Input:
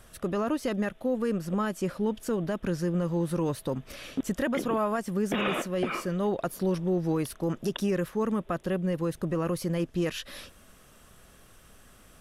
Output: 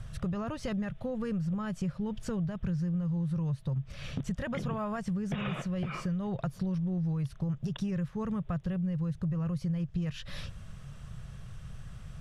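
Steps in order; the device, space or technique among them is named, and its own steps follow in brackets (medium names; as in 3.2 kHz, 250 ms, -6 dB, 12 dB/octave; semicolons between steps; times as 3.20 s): jukebox (low-pass 6.6 kHz 12 dB/octave; resonant low shelf 200 Hz +12.5 dB, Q 3; compression 5:1, threshold -31 dBFS, peak gain reduction 16 dB)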